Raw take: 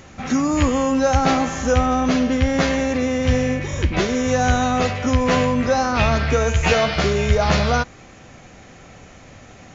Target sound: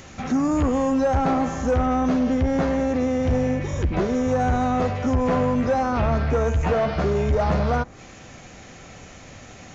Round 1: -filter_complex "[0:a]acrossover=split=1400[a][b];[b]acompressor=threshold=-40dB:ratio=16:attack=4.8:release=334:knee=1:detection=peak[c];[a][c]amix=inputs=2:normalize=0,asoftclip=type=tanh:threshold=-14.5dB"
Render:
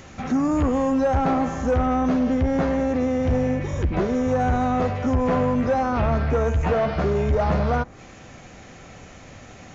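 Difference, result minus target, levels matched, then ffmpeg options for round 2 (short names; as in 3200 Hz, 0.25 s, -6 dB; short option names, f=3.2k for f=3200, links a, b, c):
8000 Hz band -3.5 dB
-filter_complex "[0:a]acrossover=split=1400[a][b];[b]acompressor=threshold=-40dB:ratio=16:attack=4.8:release=334:knee=1:detection=peak,highshelf=f=3.1k:g=4.5[c];[a][c]amix=inputs=2:normalize=0,asoftclip=type=tanh:threshold=-14.5dB"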